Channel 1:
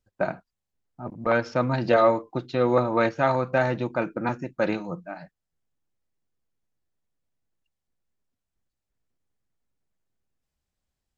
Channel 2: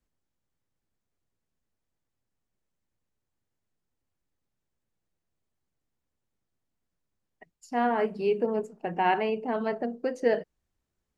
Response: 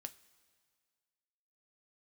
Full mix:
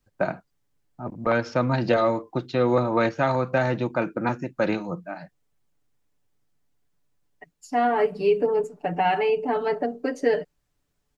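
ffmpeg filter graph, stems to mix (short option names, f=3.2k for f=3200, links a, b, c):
-filter_complex "[0:a]volume=2dB[a];[1:a]aecho=1:1:6.9:0.93,volume=3dB[b];[a][b]amix=inputs=2:normalize=0,acrossover=split=320|3000[c][d][e];[d]acompressor=threshold=-19dB:ratio=6[f];[c][f][e]amix=inputs=3:normalize=0"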